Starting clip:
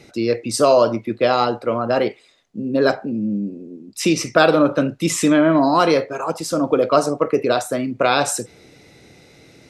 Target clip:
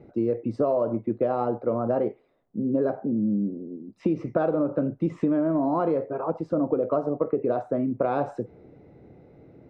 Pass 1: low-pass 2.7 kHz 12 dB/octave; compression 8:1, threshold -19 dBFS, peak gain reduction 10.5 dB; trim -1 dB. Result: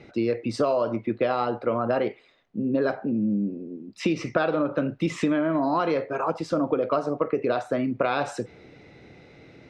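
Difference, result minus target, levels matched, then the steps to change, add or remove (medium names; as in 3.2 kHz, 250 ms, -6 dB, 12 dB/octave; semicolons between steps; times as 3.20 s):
2 kHz band +11.0 dB
change: low-pass 740 Hz 12 dB/octave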